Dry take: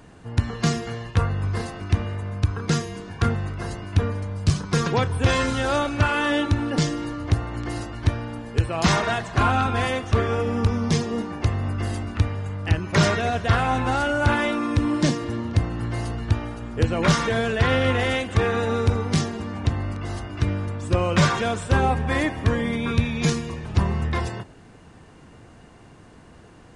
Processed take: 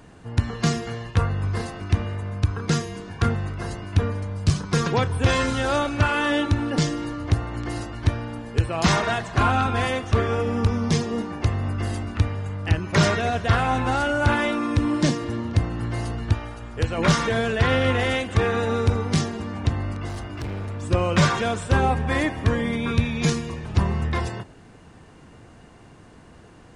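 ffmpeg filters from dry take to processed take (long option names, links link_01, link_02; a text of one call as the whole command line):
ffmpeg -i in.wav -filter_complex "[0:a]asettb=1/sr,asplit=3[link_01][link_02][link_03];[link_01]atrim=end=16.344[link_04];[link_02]atrim=start=16.34:end=16.98,asetpts=PTS-STARTPTS,afade=type=in:duration=0.004:curve=qsin,afade=type=out:start_time=0.636:duration=0.004:curve=qsin,equalizer=frequency=230:width=0.71:gain=-7.5[link_05];[link_03]atrim=start=16.976[link_06];[link_04][link_05]acrossfade=duration=0.004:curve1=hsin:curve2=qsin[link_07];[link_07][link_06]acrossfade=duration=0.004:curve1=qsin:curve2=hsin,asettb=1/sr,asplit=3[link_08][link_09][link_10];[link_08]atrim=end=20.094[link_11];[link_09]atrim=start=20.09:end=20.81,asetpts=PTS-STARTPTS,afade=type=in:duration=0.004:curve=qsin,afade=type=out:start_time=0.716:duration=0.004:curve=qsin,volume=27.5dB,asoftclip=hard,volume=-27.5dB[link_12];[link_10]atrim=start=20.806[link_13];[link_11][link_12]acrossfade=duration=0.004:curve1=hsin:curve2=qsin[link_14];[link_14][link_13]acrossfade=duration=0.004:curve1=qsin:curve2=hsin" out.wav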